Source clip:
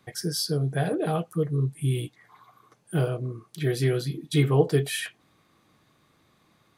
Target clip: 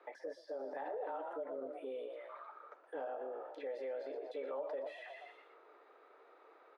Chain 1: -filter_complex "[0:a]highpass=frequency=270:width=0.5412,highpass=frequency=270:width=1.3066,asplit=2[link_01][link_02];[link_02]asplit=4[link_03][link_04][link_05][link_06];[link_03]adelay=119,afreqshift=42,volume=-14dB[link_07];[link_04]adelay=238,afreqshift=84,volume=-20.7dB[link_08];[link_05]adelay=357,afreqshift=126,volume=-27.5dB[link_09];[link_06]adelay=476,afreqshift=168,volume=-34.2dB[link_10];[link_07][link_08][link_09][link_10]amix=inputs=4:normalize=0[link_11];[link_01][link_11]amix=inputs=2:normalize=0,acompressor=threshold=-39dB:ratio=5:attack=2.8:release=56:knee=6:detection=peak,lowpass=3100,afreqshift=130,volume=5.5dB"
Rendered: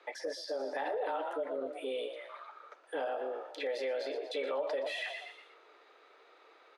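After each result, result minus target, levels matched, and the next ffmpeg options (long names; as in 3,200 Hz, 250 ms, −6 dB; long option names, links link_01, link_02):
4,000 Hz band +12.0 dB; downward compressor: peak gain reduction −6.5 dB
-filter_complex "[0:a]highpass=frequency=270:width=0.5412,highpass=frequency=270:width=1.3066,asplit=2[link_01][link_02];[link_02]asplit=4[link_03][link_04][link_05][link_06];[link_03]adelay=119,afreqshift=42,volume=-14dB[link_07];[link_04]adelay=238,afreqshift=84,volume=-20.7dB[link_08];[link_05]adelay=357,afreqshift=126,volume=-27.5dB[link_09];[link_06]adelay=476,afreqshift=168,volume=-34.2dB[link_10];[link_07][link_08][link_09][link_10]amix=inputs=4:normalize=0[link_11];[link_01][link_11]amix=inputs=2:normalize=0,acompressor=threshold=-39dB:ratio=5:attack=2.8:release=56:knee=6:detection=peak,lowpass=1300,afreqshift=130,volume=5.5dB"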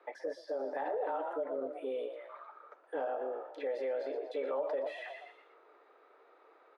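downward compressor: peak gain reduction −6.5 dB
-filter_complex "[0:a]highpass=frequency=270:width=0.5412,highpass=frequency=270:width=1.3066,asplit=2[link_01][link_02];[link_02]asplit=4[link_03][link_04][link_05][link_06];[link_03]adelay=119,afreqshift=42,volume=-14dB[link_07];[link_04]adelay=238,afreqshift=84,volume=-20.7dB[link_08];[link_05]adelay=357,afreqshift=126,volume=-27.5dB[link_09];[link_06]adelay=476,afreqshift=168,volume=-34.2dB[link_10];[link_07][link_08][link_09][link_10]amix=inputs=4:normalize=0[link_11];[link_01][link_11]amix=inputs=2:normalize=0,acompressor=threshold=-47dB:ratio=5:attack=2.8:release=56:knee=6:detection=peak,lowpass=1300,afreqshift=130,volume=5.5dB"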